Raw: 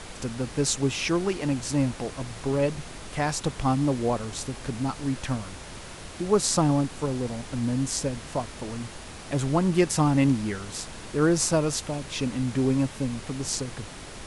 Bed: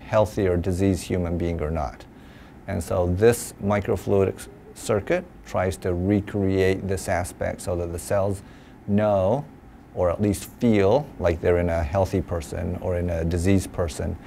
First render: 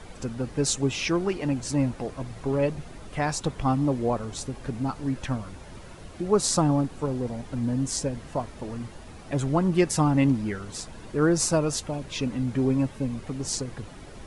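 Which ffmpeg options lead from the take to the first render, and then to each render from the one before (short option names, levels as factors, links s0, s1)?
-af "afftdn=nr=10:nf=-41"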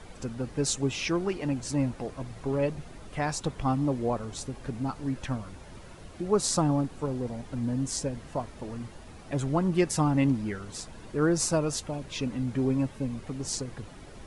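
-af "volume=0.708"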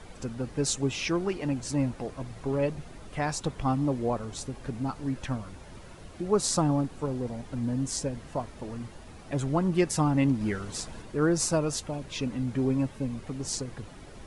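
-filter_complex "[0:a]asplit=3[s0][s1][s2];[s0]atrim=end=10.412[s3];[s1]atrim=start=10.408:end=11.022,asetpts=PTS-STARTPTS,volume=1.5[s4];[s2]atrim=start=11.018[s5];[s3][s4]acrossfade=d=0.004:c1=hsin:c2=hsin[s6];[s6][s5]acrossfade=d=0.004:c1=hsin:c2=hsin"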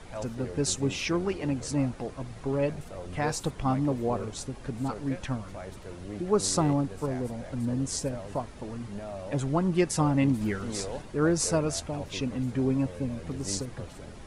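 -filter_complex "[1:a]volume=0.119[s0];[0:a][s0]amix=inputs=2:normalize=0"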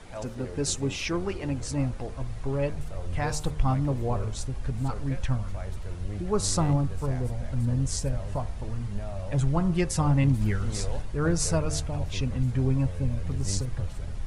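-af "bandreject=f=75.7:t=h:w=4,bandreject=f=151.4:t=h:w=4,bandreject=f=227.1:t=h:w=4,bandreject=f=302.8:t=h:w=4,bandreject=f=378.5:t=h:w=4,bandreject=f=454.2:t=h:w=4,bandreject=f=529.9:t=h:w=4,bandreject=f=605.6:t=h:w=4,bandreject=f=681.3:t=h:w=4,bandreject=f=757:t=h:w=4,bandreject=f=832.7:t=h:w=4,bandreject=f=908.4:t=h:w=4,bandreject=f=984.1:t=h:w=4,bandreject=f=1059.8:t=h:w=4,bandreject=f=1135.5:t=h:w=4,bandreject=f=1211.2:t=h:w=4,bandreject=f=1286.9:t=h:w=4,bandreject=f=1362.6:t=h:w=4,bandreject=f=1438.3:t=h:w=4,asubboost=boost=7:cutoff=100"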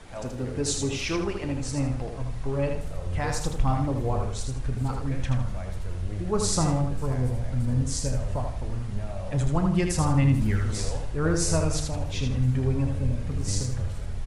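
-filter_complex "[0:a]asplit=2[s0][s1];[s1]adelay=32,volume=0.224[s2];[s0][s2]amix=inputs=2:normalize=0,asplit=2[s3][s4];[s4]aecho=0:1:79|158|237|316:0.562|0.169|0.0506|0.0152[s5];[s3][s5]amix=inputs=2:normalize=0"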